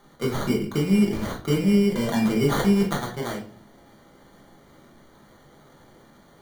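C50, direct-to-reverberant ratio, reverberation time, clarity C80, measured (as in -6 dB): 8.0 dB, -3.0 dB, 0.45 s, 13.0 dB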